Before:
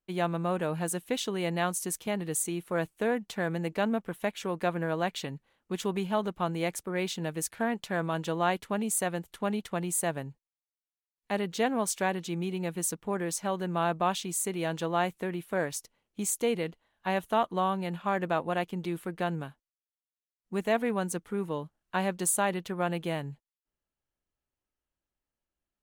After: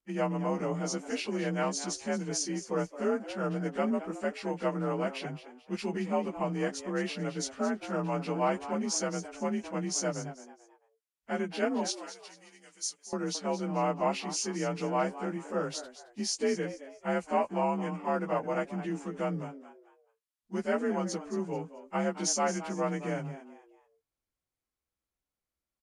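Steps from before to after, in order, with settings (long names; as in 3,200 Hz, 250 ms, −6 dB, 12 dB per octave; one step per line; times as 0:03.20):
partials spread apart or drawn together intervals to 89%
0:11.92–0:13.13: first difference
echo with shifted repeats 219 ms, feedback 32%, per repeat +100 Hz, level −13.5 dB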